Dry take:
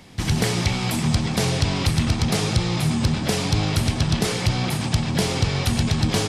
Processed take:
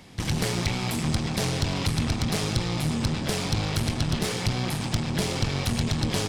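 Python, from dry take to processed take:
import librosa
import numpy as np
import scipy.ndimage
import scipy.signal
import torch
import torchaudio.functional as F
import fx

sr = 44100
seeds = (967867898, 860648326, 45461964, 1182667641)

y = fx.diode_clip(x, sr, knee_db=-26.5)
y = y * 10.0 ** (-2.0 / 20.0)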